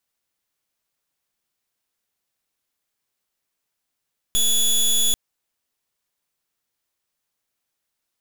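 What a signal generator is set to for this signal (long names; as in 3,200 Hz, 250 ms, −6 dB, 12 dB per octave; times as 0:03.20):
pulse wave 3,410 Hz, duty 17% −18 dBFS 0.79 s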